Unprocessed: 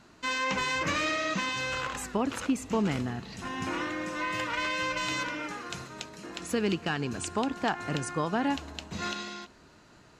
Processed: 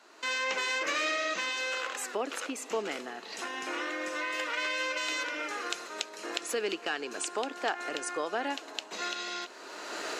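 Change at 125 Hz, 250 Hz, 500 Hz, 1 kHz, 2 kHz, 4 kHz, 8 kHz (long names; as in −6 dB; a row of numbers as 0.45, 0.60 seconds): below −25 dB, −10.5 dB, −0.5 dB, −3.0 dB, 0.0 dB, +1.0 dB, +1.5 dB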